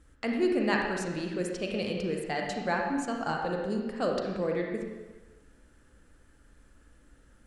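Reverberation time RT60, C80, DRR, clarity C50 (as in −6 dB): 1.3 s, 4.0 dB, 0.5 dB, 1.5 dB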